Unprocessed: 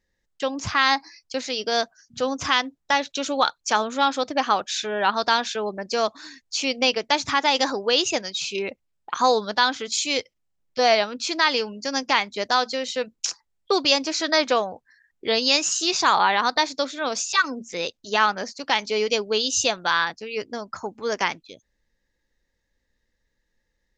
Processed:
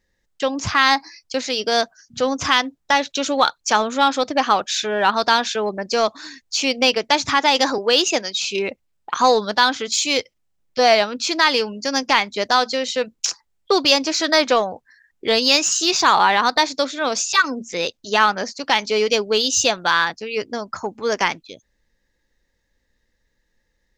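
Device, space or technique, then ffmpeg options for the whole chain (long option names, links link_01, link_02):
parallel distortion: -filter_complex "[0:a]asplit=2[link_01][link_02];[link_02]asoftclip=type=hard:threshold=-21.5dB,volume=-12dB[link_03];[link_01][link_03]amix=inputs=2:normalize=0,asettb=1/sr,asplit=3[link_04][link_05][link_06];[link_04]atrim=end=7.784[link_07];[link_05]atrim=start=7.78:end=8.48,asetpts=PTS-STARTPTS,afade=type=in:duration=0.004:curve=qsin,afade=type=out:start_time=0.696:duration=0.004:curve=qsin,highpass=frequency=200:width=0.5412,highpass=frequency=200:width=1.3066[link_08];[link_06]atrim=start=8.476[link_09];[link_07][link_08]acrossfade=duration=0.004:curve1=hsin:curve2=qsin[link_10];[link_10][link_09]acrossfade=duration=0.004:curve1=qsin:curve2=hsin,volume=3dB"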